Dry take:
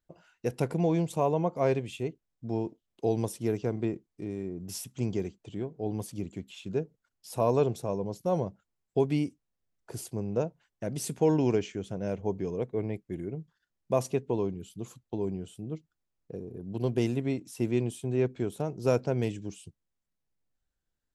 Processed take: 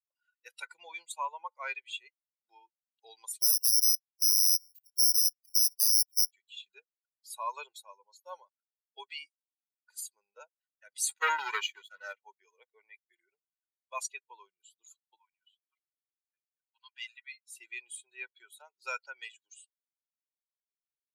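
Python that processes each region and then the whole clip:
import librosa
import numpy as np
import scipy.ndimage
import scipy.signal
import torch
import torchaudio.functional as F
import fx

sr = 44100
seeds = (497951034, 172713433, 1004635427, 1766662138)

y = fx.chain(x, sr, fx.level_steps(step_db=19),
    fx.resample_bad(factor=8, down='filtered', up='zero_stuff'),
    fx.notch_cascade(direction='rising', hz=1.6), at=(3.42, 6.32))
y = fx.chain(y, sr, fx.leveller(passes=3),
    fx.upward_expand(threshold_db=-36.0, expansion=1.5), at=(11.08, 12.13))
y = fx.chain(y, sr, fx.highpass(hz=880.0, slope=24),
    fx.env_lowpass(base_hz=2200.0, full_db=-41.5),
    fx.high_shelf(hz=5400.0, db=-6.5), at=(15.16, 17.46))
y = fx.bin_expand(y, sr, power=2.0)
y = scipy.signal.sosfilt(scipy.signal.butter(4, 1200.0, 'highpass', fs=sr, output='sos'), y)
y = y + 0.69 * np.pad(y, (int(2.1 * sr / 1000.0), 0))[:len(y)]
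y = y * 10.0 ** (7.5 / 20.0)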